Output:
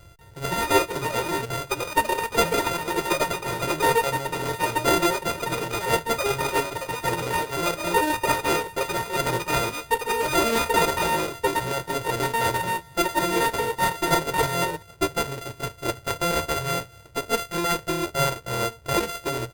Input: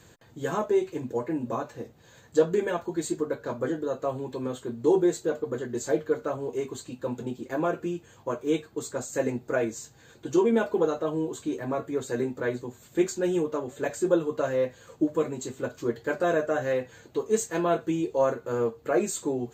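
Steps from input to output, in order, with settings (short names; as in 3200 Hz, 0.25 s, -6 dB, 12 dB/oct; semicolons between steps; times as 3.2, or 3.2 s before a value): sample sorter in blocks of 64 samples; low shelf 110 Hz +11 dB; reverse; upward compressor, threshold -45 dBFS; reverse; echoes that change speed 0.189 s, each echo +5 st, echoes 2; comb 2.1 ms, depth 65%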